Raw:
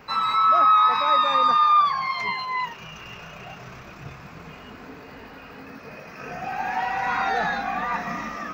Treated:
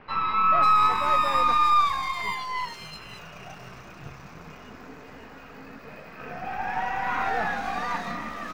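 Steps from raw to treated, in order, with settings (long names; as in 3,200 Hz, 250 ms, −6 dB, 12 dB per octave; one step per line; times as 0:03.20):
gain on one half-wave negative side −7 dB
multiband delay without the direct sound lows, highs 540 ms, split 3,500 Hz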